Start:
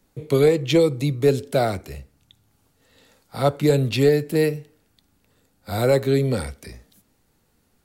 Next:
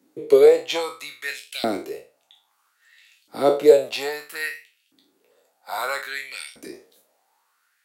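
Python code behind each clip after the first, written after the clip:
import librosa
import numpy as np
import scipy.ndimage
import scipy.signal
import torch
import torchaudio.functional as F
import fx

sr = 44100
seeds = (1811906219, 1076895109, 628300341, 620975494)

y = fx.spec_trails(x, sr, decay_s=0.35)
y = fx.filter_lfo_highpass(y, sr, shape='saw_up', hz=0.61, low_hz=260.0, high_hz=3200.0, q=4.3)
y = F.gain(torch.from_numpy(y), -3.0).numpy()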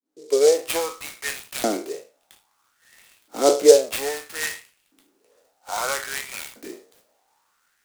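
y = fx.fade_in_head(x, sr, length_s=0.77)
y = scipy.signal.sosfilt(scipy.signal.butter(4, 190.0, 'highpass', fs=sr, output='sos'), y)
y = fx.noise_mod_delay(y, sr, seeds[0], noise_hz=5700.0, depth_ms=0.063)
y = F.gain(torch.from_numpy(y), 1.0).numpy()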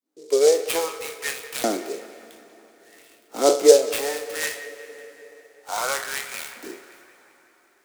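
y = fx.low_shelf(x, sr, hz=120.0, db=-6.0)
y = fx.echo_banded(y, sr, ms=188, feedback_pct=67, hz=1800.0, wet_db=-13.5)
y = fx.rev_plate(y, sr, seeds[1], rt60_s=4.3, hf_ratio=0.75, predelay_ms=0, drr_db=14.5)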